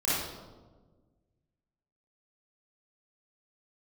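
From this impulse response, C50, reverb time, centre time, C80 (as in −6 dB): −4.0 dB, 1.4 s, 92 ms, 1.5 dB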